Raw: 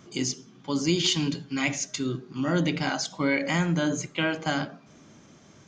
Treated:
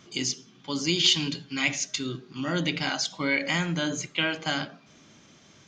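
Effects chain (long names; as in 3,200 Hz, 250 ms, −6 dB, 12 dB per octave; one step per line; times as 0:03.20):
parametric band 3,400 Hz +9 dB 2 octaves
level −4 dB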